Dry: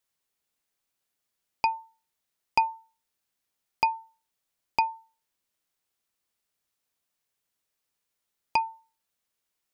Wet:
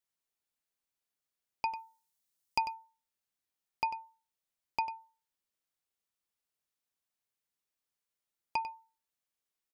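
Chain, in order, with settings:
0:01.69–0:02.74: bass and treble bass +3 dB, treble +9 dB
single-tap delay 96 ms −12 dB
level −8.5 dB

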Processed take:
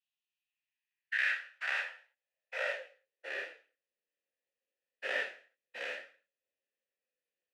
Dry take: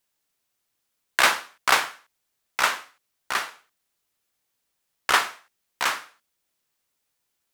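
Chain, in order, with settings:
every bin's largest magnitude spread in time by 120 ms
high-pass filter sweep 3,200 Hz → 210 Hz, 0:00.25–0:04.08
formant filter e
in parallel at 0 dB: downward compressor, threshold −33 dBFS, peak gain reduction 15.5 dB
on the sum: micro pitch shift up and down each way 14 cents
level −7 dB

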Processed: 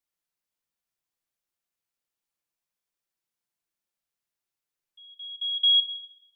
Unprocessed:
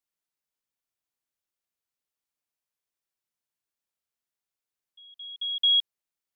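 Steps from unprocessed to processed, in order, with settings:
rectangular room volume 1,200 cubic metres, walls mixed, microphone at 0.81 metres

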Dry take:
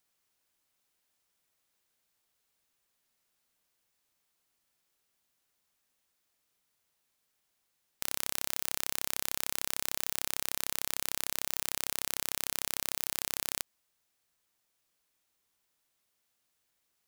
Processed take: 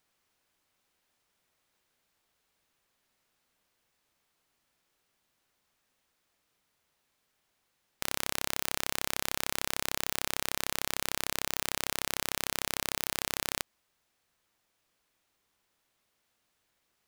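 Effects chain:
high-shelf EQ 4,900 Hz −9 dB
level +6.5 dB

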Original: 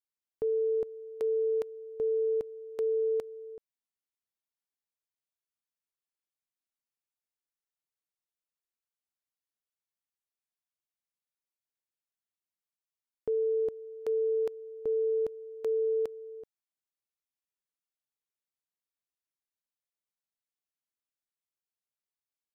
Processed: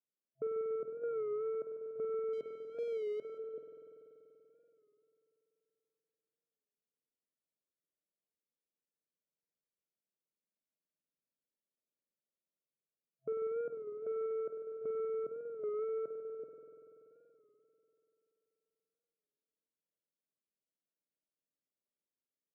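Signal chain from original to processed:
0:01.04–0:01.55: sign of each sample alone
brick-wall band-pass 130–660 Hz
brickwall limiter −31.5 dBFS, peak gain reduction 7 dB
soft clipping −32.5 dBFS, distortion −20 dB
0:02.33–0:03.38: power curve on the samples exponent 1.4
spring reverb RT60 3.5 s, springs 48 ms, chirp 20 ms, DRR 1.5 dB
wow of a warped record 33 1/3 rpm, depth 100 cents
level +2 dB

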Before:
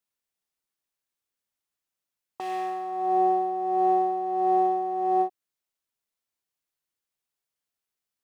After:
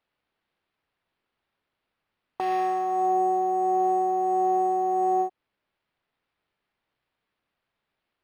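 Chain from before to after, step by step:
downward compressor 6 to 1, threshold −27 dBFS, peak gain reduction 8.5 dB
linearly interpolated sample-rate reduction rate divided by 6×
level +6.5 dB

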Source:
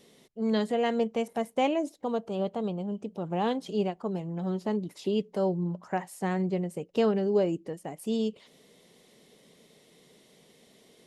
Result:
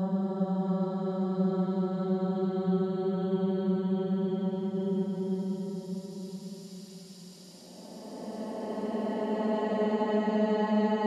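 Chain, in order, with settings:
tape wow and flutter 29 cents
extreme stretch with random phases 46×, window 0.10 s, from 0:04.46

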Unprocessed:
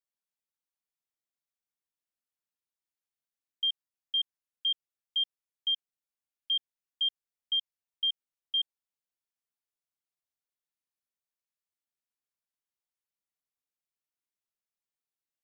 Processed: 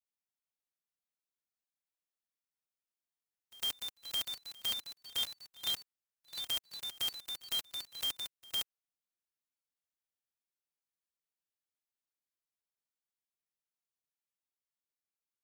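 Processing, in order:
spectral envelope flattened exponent 0.1
echo ahead of the sound 106 ms −22 dB
delay with pitch and tempo change per echo 586 ms, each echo +2 semitones, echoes 3, each echo −6 dB
level −6 dB

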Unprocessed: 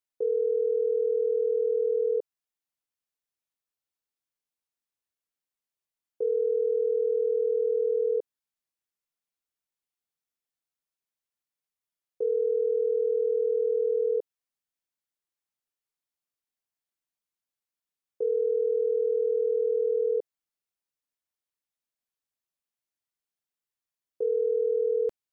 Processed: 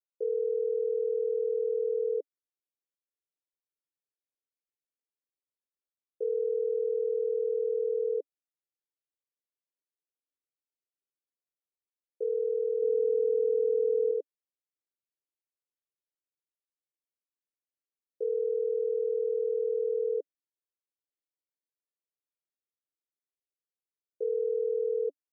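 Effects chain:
0:12.82–0:14.11: low-shelf EQ 410 Hz +6.5 dB
elliptic band-pass filter 280–580 Hz
level −3 dB

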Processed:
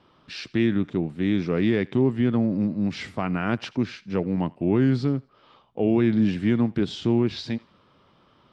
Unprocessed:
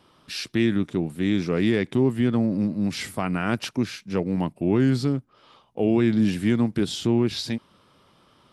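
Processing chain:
high-frequency loss of the air 150 metres
feedback echo with a high-pass in the loop 83 ms, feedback 39%, high-pass 700 Hz, level −22.5 dB

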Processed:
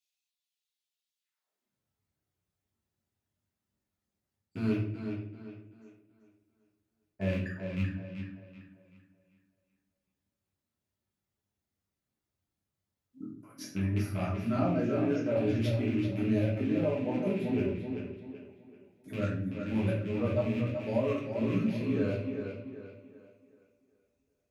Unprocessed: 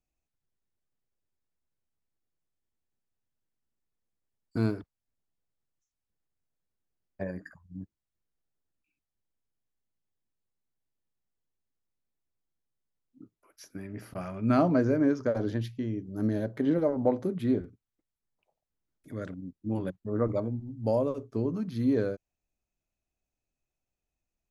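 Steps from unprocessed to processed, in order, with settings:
loose part that buzzes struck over −37 dBFS, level −31 dBFS
reverb reduction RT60 1.4 s
reversed playback
downward compressor 4 to 1, threshold −37 dBFS, peak gain reduction 15 dB
reversed playback
high-pass filter sweep 3,400 Hz → 87 Hz, 0:01.18–0:01.78
on a send: tape delay 384 ms, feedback 40%, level −5.5 dB, low-pass 5,100 Hz
on the sum: rectangular room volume 98 cubic metres, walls mixed, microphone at 1.5 metres

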